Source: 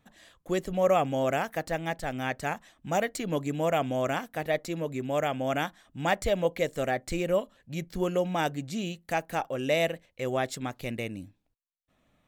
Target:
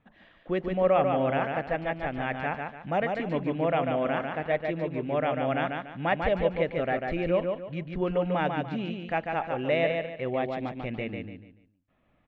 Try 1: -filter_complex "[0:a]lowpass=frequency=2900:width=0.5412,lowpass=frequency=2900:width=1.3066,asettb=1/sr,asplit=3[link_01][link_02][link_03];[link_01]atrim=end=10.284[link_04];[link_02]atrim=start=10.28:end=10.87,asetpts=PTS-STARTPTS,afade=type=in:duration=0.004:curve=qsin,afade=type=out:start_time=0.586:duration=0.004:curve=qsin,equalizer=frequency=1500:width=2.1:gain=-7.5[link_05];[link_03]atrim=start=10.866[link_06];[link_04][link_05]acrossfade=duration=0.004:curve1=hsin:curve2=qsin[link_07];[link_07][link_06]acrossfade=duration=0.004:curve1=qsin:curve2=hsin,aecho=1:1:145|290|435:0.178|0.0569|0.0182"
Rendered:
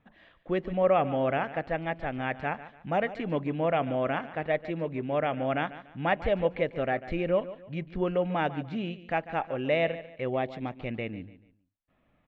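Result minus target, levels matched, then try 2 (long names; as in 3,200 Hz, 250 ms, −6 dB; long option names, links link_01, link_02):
echo-to-direct −10.5 dB
-filter_complex "[0:a]lowpass=frequency=2900:width=0.5412,lowpass=frequency=2900:width=1.3066,asettb=1/sr,asplit=3[link_01][link_02][link_03];[link_01]atrim=end=10.284[link_04];[link_02]atrim=start=10.28:end=10.87,asetpts=PTS-STARTPTS,afade=type=in:duration=0.004:curve=qsin,afade=type=out:start_time=0.586:duration=0.004:curve=qsin,equalizer=frequency=1500:width=2.1:gain=-7.5[link_05];[link_03]atrim=start=10.866[link_06];[link_04][link_05]acrossfade=duration=0.004:curve1=hsin:curve2=qsin[link_07];[link_07][link_06]acrossfade=duration=0.004:curve1=qsin:curve2=hsin,aecho=1:1:145|290|435|580:0.596|0.191|0.061|0.0195"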